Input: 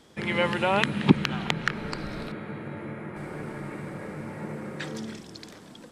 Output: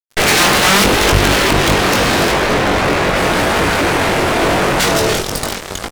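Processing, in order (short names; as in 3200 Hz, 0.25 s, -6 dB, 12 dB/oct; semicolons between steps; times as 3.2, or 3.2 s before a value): full-wave rectifier; low shelf 72 Hz -4.5 dB; notches 50/100/150/200/250/300 Hz; fuzz box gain 42 dB, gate -47 dBFS; doubler 21 ms -4.5 dB; gain +4 dB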